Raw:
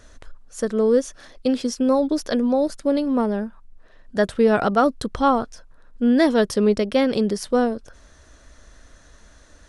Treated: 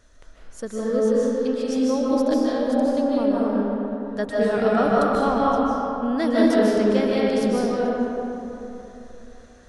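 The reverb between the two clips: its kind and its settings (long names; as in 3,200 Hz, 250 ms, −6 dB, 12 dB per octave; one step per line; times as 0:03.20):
comb and all-pass reverb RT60 3.2 s, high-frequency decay 0.5×, pre-delay 110 ms, DRR −6.5 dB
level −8 dB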